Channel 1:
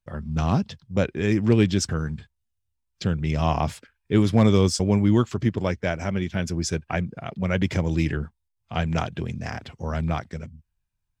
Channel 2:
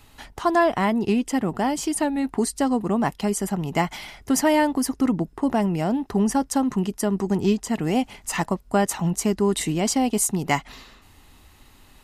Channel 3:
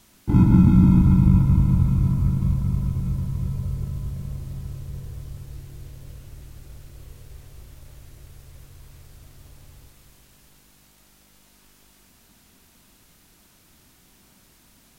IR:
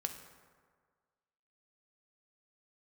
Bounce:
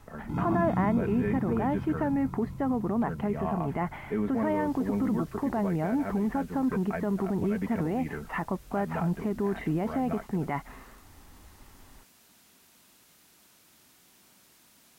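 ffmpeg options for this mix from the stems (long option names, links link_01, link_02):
-filter_complex "[0:a]highpass=frequency=230:poles=1,aecho=1:1:4.5:0.58,volume=-6dB[link_01];[1:a]volume=-1dB[link_02];[2:a]highpass=frequency=320:poles=1,volume=-2.5dB,afade=type=in:start_time=4.26:duration=0.53:silence=0.446684[link_03];[link_01][link_02]amix=inputs=2:normalize=0,lowpass=frequency=1900:width=0.5412,lowpass=frequency=1900:width=1.3066,alimiter=limit=-20.5dB:level=0:latency=1:release=46,volume=0dB[link_04];[link_03][link_04]amix=inputs=2:normalize=0"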